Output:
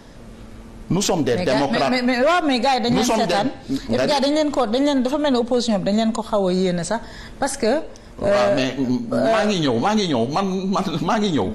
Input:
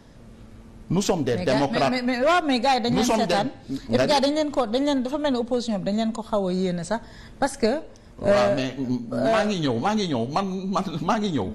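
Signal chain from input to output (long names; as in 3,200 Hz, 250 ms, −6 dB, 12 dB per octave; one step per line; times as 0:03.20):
parametric band 110 Hz −5 dB 2.1 octaves
brickwall limiter −19 dBFS, peak gain reduction 10 dB
level +8.5 dB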